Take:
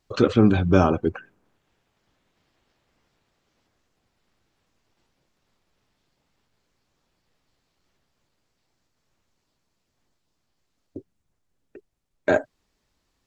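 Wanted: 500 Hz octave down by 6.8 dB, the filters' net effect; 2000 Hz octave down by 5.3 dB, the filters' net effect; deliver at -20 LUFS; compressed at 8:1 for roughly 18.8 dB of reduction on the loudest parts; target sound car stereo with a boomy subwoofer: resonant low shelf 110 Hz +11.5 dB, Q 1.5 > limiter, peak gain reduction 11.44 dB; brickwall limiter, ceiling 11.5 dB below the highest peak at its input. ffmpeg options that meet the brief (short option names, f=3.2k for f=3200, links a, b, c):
-af "equalizer=f=500:t=o:g=-8,equalizer=f=2k:t=o:g=-7,acompressor=threshold=-33dB:ratio=8,alimiter=level_in=6.5dB:limit=-24dB:level=0:latency=1,volume=-6.5dB,lowshelf=f=110:t=q:w=1.5:g=11.5,volume=26dB,alimiter=limit=-8.5dB:level=0:latency=1"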